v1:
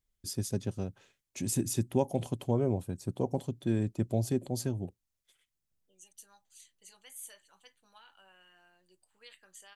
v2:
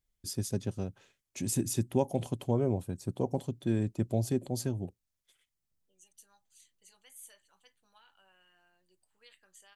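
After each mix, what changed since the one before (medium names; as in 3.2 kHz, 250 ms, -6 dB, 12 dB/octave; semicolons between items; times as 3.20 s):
second voice -5.0 dB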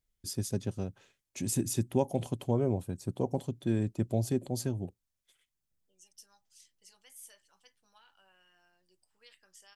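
second voice: remove Butterworth band-stop 5.3 kHz, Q 3.9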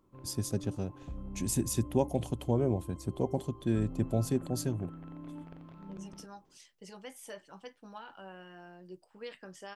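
second voice: remove pre-emphasis filter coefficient 0.97; background: unmuted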